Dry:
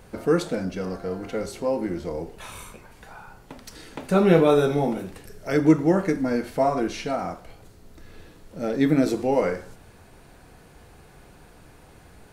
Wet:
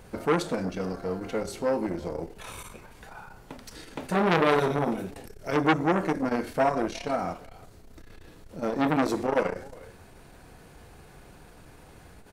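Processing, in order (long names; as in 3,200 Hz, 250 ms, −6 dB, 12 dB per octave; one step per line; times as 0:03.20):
far-end echo of a speakerphone 350 ms, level −21 dB
saturating transformer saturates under 1,800 Hz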